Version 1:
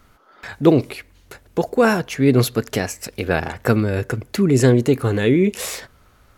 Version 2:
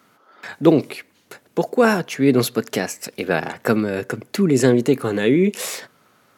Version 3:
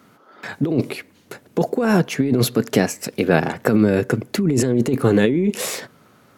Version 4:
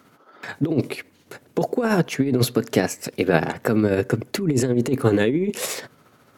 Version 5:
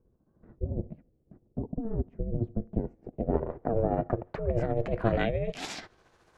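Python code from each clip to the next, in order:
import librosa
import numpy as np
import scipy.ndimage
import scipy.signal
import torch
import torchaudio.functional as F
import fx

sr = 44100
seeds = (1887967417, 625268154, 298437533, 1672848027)

y1 = scipy.signal.sosfilt(scipy.signal.butter(4, 150.0, 'highpass', fs=sr, output='sos'), x)
y2 = fx.low_shelf(y1, sr, hz=430.0, db=9.0)
y2 = fx.over_compress(y2, sr, threshold_db=-14.0, ratio=-1.0)
y2 = y2 * 10.0 ** (-2.0 / 20.0)
y3 = fx.peak_eq(y2, sr, hz=200.0, db=-6.0, octaves=0.24)
y3 = y3 * (1.0 - 0.42 / 2.0 + 0.42 / 2.0 * np.cos(2.0 * np.pi * 14.0 * (np.arange(len(y3)) / sr)))
y4 = y3 * np.sin(2.0 * np.pi * 230.0 * np.arange(len(y3)) / sr)
y4 = fx.filter_sweep_lowpass(y4, sr, from_hz=260.0, to_hz=7800.0, start_s=2.69, end_s=6.25, q=1.1)
y4 = y4 * 10.0 ** (-5.5 / 20.0)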